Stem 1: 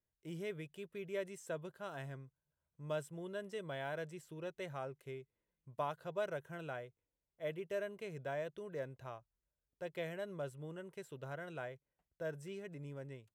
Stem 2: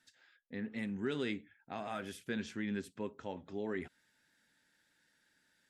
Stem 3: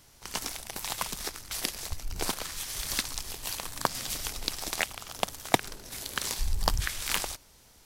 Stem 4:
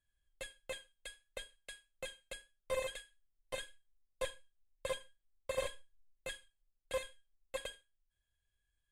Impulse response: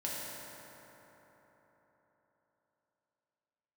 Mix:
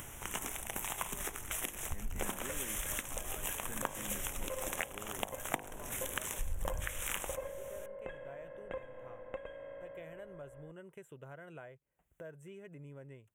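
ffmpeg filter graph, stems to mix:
-filter_complex "[0:a]volume=0.141[s0];[1:a]adelay=1400,volume=0.251[s1];[2:a]bandreject=f=50.9:t=h:w=4,bandreject=f=101.8:t=h:w=4,bandreject=f=152.7:t=h:w=4,bandreject=f=203.6:t=h:w=4,bandreject=f=254.5:t=h:w=4,bandreject=f=305.4:t=h:w=4,bandreject=f=356.3:t=h:w=4,bandreject=f=407.2:t=h:w=4,bandreject=f=458.1:t=h:w=4,bandreject=f=509:t=h:w=4,bandreject=f=559.9:t=h:w=4,bandreject=f=610.8:t=h:w=4,bandreject=f=661.7:t=h:w=4,bandreject=f=712.6:t=h:w=4,bandreject=f=763.5:t=h:w=4,bandreject=f=814.4:t=h:w=4,bandreject=f=865.3:t=h:w=4,bandreject=f=916.2:t=h:w=4,bandreject=f=967.1:t=h:w=4,bandreject=f=1018:t=h:w=4,bandreject=f=1068.9:t=h:w=4,bandreject=f=1119.8:t=h:w=4,acompressor=threshold=0.0178:ratio=5,volume=1.26[s2];[3:a]lowpass=1400,acompressor=threshold=0.00224:ratio=2,adelay=1800,volume=1.41,asplit=2[s3][s4];[s4]volume=0.531[s5];[4:a]atrim=start_sample=2205[s6];[s5][s6]afir=irnorm=-1:irlink=0[s7];[s0][s1][s2][s3][s7]amix=inputs=5:normalize=0,acompressor=mode=upward:threshold=0.0141:ratio=2.5,asuperstop=centerf=4600:order=4:qfactor=1.3"

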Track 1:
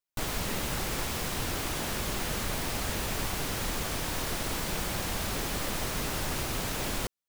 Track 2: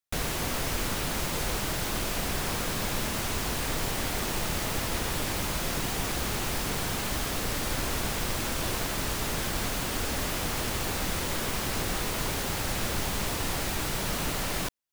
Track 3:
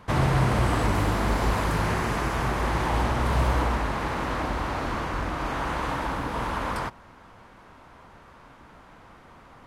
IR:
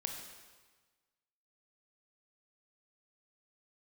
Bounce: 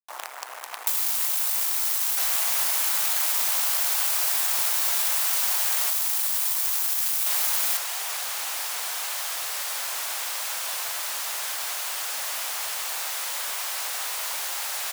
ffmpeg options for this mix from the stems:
-filter_complex "[0:a]aemphasis=mode=production:type=50kf,acontrast=23,adelay=700,volume=0.531[s0];[1:a]adelay=2050,volume=0.473,asplit=3[s1][s2][s3];[s1]atrim=end=5.9,asetpts=PTS-STARTPTS,afade=t=out:st=5.896:d=0.004:c=hsin[s4];[s2]atrim=start=5.9:end=7.26,asetpts=PTS-STARTPTS,volume=0[s5];[s3]atrim=start=7.26,asetpts=PTS-STARTPTS,afade=t=in:d=0.004:c=hsin[s6];[s4][s5][s6]concat=n=3:v=0:a=1[s7];[2:a]highshelf=f=4100:g=-4.5,afwtdn=0.0282,volume=0.299[s8];[s0][s8]amix=inputs=2:normalize=0,acrusher=bits=5:dc=4:mix=0:aa=0.000001,acompressor=threshold=0.0282:ratio=16,volume=1[s9];[s7][s9]amix=inputs=2:normalize=0,highpass=f=690:w=0.5412,highpass=f=690:w=1.3066,highshelf=f=4700:g=7,acontrast=42"

